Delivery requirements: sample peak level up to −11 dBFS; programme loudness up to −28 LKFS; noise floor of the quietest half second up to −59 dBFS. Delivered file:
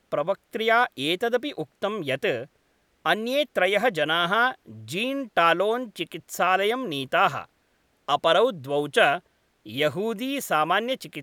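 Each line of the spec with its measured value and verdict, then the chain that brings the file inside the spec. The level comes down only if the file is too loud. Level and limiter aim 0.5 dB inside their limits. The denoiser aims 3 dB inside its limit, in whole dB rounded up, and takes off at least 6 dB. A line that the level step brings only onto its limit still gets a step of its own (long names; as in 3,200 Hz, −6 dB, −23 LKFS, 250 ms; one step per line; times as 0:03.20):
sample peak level −6.0 dBFS: out of spec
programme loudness −24.0 LKFS: out of spec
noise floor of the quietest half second −67 dBFS: in spec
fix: level −4.5 dB
brickwall limiter −11.5 dBFS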